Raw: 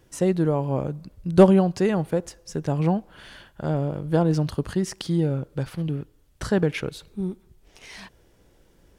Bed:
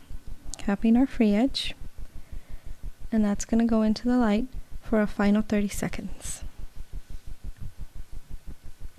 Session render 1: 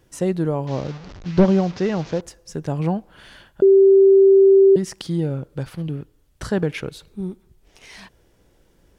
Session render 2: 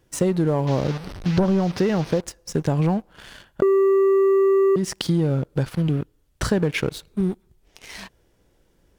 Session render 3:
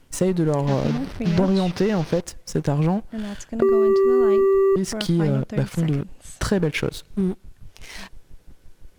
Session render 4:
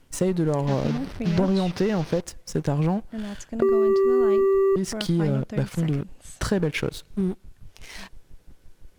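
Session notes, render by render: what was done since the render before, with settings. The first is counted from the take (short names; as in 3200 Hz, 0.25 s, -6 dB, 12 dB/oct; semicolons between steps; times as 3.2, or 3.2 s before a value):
0.67–2.21 delta modulation 32 kbps, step -33 dBFS; 3.62–4.76 bleep 389 Hz -8 dBFS
sample leveller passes 2; compressor 6:1, threshold -17 dBFS, peak gain reduction 10 dB
add bed -6.5 dB
gain -2.5 dB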